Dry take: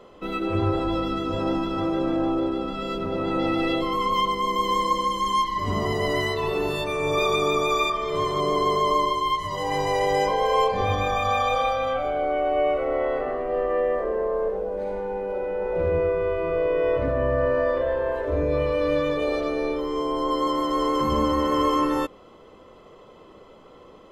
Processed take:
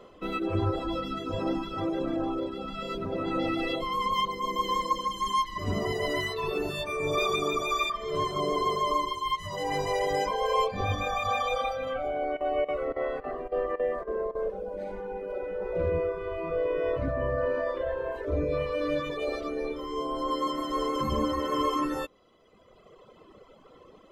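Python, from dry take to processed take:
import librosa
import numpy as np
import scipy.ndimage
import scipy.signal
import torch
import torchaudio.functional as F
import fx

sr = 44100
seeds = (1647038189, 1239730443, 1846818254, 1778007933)

y = fx.peak_eq(x, sr, hz=9200.0, db=-5.5, octaves=0.42, at=(4.23, 5.17))
y = fx.chopper(y, sr, hz=3.6, depth_pct=60, duty_pct=85, at=(12.13, 14.51))
y = fx.dereverb_blind(y, sr, rt60_s=1.5)
y = fx.notch(y, sr, hz=870.0, q=12.0)
y = y * 10.0 ** (-2.0 / 20.0)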